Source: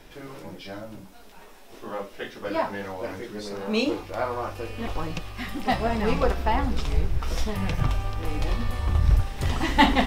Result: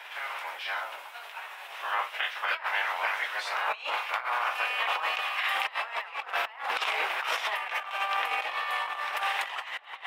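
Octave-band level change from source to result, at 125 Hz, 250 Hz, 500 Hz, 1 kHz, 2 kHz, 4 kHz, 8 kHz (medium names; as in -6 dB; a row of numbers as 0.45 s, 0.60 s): under -40 dB, under -30 dB, -11.0 dB, -0.5 dB, +4.5 dB, +1.0 dB, -4.0 dB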